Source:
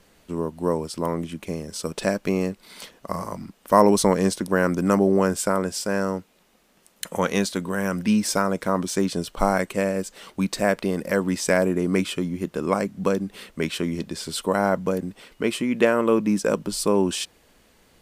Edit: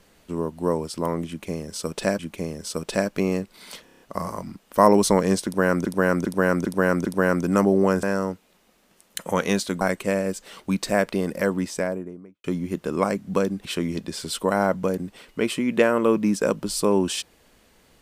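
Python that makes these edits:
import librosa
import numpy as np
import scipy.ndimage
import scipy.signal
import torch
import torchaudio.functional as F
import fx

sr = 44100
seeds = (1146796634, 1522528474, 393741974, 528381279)

y = fx.studio_fade_out(x, sr, start_s=11.01, length_s=1.13)
y = fx.edit(y, sr, fx.repeat(start_s=1.28, length_s=0.91, count=2),
    fx.stutter(start_s=2.94, slice_s=0.03, count=6),
    fx.repeat(start_s=4.39, length_s=0.4, count=5),
    fx.cut(start_s=5.37, length_s=0.52),
    fx.cut(start_s=7.67, length_s=1.84),
    fx.cut(start_s=13.35, length_s=0.33), tone=tone)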